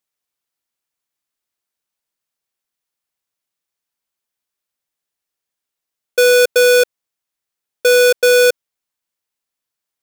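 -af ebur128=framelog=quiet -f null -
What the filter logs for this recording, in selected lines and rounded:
Integrated loudness:
  I:         -12.2 LUFS
  Threshold: -22.5 LUFS
Loudness range:
  LRA:         6.0 LU
  Threshold: -35.9 LUFS
  LRA low:   -19.9 LUFS
  LRA high:  -13.9 LUFS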